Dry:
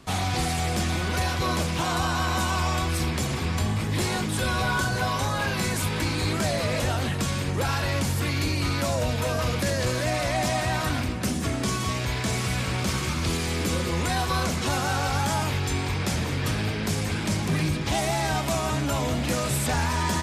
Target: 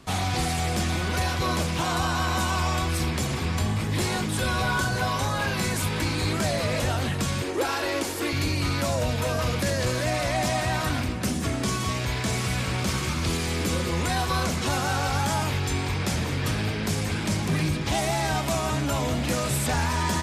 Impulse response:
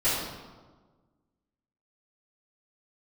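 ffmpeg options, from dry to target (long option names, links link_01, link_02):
-filter_complex "[0:a]asettb=1/sr,asplit=3[link_01][link_02][link_03];[link_01]atrim=end=7.424[link_04];[link_02]atrim=start=7.42:end=8.33,asetpts=PTS-STARTPTS,afade=type=in:duration=0.004:curve=qsin,afade=type=out:start_time=0.906:duration=0.004:curve=qsin,lowshelf=frequency=230:width_type=q:width=3:gain=-12.5[link_05];[link_03]atrim=start=8.326[link_06];[link_04][link_05]acrossfade=duration=0.004:curve1=hsin:curve2=qsin[link_07];[link_07][link_06]acrossfade=duration=0.004:curve1=qsin:curve2=hsin"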